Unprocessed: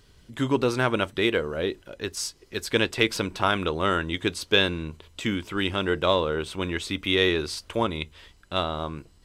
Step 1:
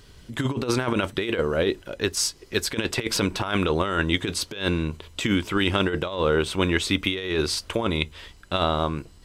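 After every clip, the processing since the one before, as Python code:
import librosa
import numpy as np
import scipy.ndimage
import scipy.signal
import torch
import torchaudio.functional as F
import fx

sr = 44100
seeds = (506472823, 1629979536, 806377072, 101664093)

y = fx.over_compress(x, sr, threshold_db=-26.0, ratio=-0.5)
y = F.gain(torch.from_numpy(y), 4.0).numpy()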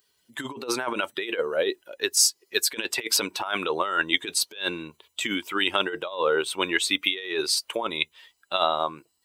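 y = fx.bin_expand(x, sr, power=1.5)
y = scipy.signal.sosfilt(scipy.signal.butter(2, 460.0, 'highpass', fs=sr, output='sos'), y)
y = fx.high_shelf(y, sr, hz=8800.0, db=10.5)
y = F.gain(torch.from_numpy(y), 3.5).numpy()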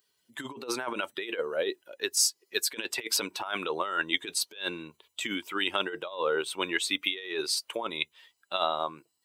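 y = scipy.signal.sosfilt(scipy.signal.butter(2, 87.0, 'highpass', fs=sr, output='sos'), x)
y = F.gain(torch.from_numpy(y), -5.0).numpy()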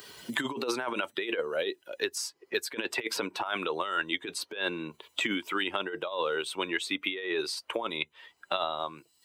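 y = fx.high_shelf(x, sr, hz=3900.0, db=-9.0)
y = fx.band_squash(y, sr, depth_pct=100)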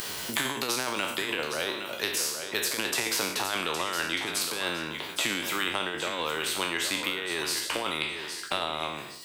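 y = fx.spec_trails(x, sr, decay_s=0.46)
y = fx.echo_feedback(y, sr, ms=814, feedback_pct=18, wet_db=-15.5)
y = fx.spectral_comp(y, sr, ratio=2.0)
y = F.gain(torch.from_numpy(y), 2.0).numpy()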